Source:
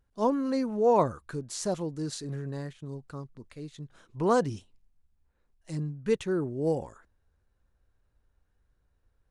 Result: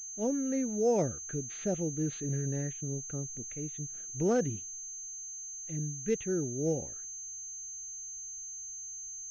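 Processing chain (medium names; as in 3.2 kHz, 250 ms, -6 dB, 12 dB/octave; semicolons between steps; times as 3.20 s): gain riding within 4 dB 2 s; static phaser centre 2.5 kHz, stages 4; class-D stage that switches slowly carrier 6.3 kHz; trim -1 dB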